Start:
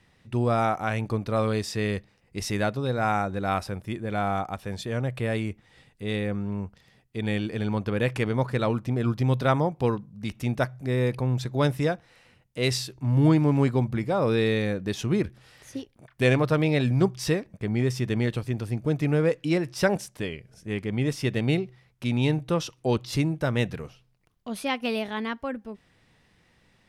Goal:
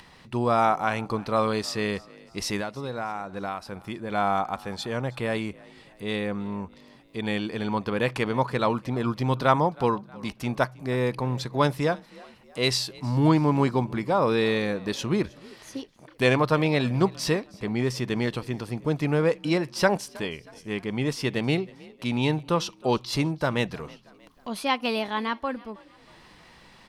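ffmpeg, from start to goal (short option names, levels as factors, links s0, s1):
-filter_complex "[0:a]bandreject=f=3700:w=13,acompressor=mode=upward:threshold=0.00708:ratio=2.5,equalizer=f=100:t=o:w=0.67:g=-8,equalizer=f=1000:t=o:w=0.67:g=8,equalizer=f=4000:t=o:w=0.67:g=7,asettb=1/sr,asplit=3[s0][s1][s2];[s0]atrim=end=2.594[s3];[s1]atrim=start=2.59:end=4.1,asetpts=PTS-STARTPTS,afade=t=in:d=0.004:c=qsin,afade=t=out:st=1.506:d=0.004:c=qsin,acompressor=threshold=0.0355:ratio=6[s4];[s2]atrim=start=4.096[s5];[s3][s4]acrossfade=d=0.004:c1=hsin:c2=qsin[s6];[s6][s5]acrossfade=d=0.004:c1=qsin:c2=hsin,asplit=2[s7][s8];[s8]asplit=3[s9][s10][s11];[s9]adelay=317,afreqshift=41,volume=0.0708[s12];[s10]adelay=634,afreqshift=82,volume=0.0331[s13];[s11]adelay=951,afreqshift=123,volume=0.0157[s14];[s12][s13][s14]amix=inputs=3:normalize=0[s15];[s7][s15]amix=inputs=2:normalize=0"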